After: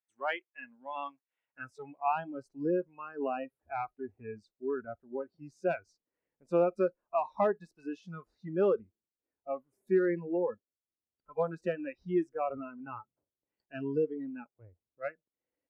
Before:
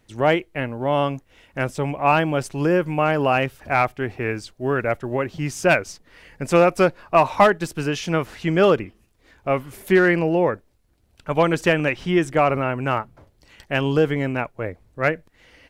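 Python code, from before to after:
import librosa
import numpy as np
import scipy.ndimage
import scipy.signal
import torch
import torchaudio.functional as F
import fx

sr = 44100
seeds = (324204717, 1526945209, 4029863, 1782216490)

y = fx.noise_reduce_blind(x, sr, reduce_db=24)
y = fx.filter_sweep_bandpass(y, sr, from_hz=1600.0, to_hz=390.0, start_s=1.25, end_s=2.44, q=0.9)
y = y * 10.0 ** (-9.0 / 20.0)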